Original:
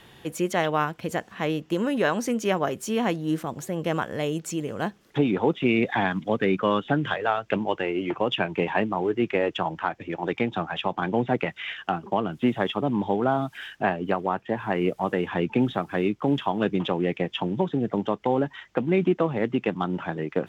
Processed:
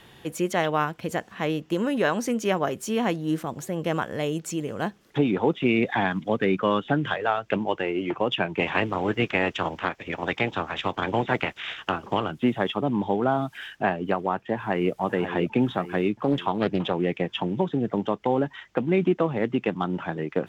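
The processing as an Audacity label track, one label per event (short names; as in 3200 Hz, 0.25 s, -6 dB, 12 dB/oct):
8.590000	12.300000	spectral limiter ceiling under each frame's peak by 16 dB
14.550000	14.950000	echo throw 0.54 s, feedback 55%, level -9.5 dB
16.140000	16.960000	Doppler distortion depth 0.31 ms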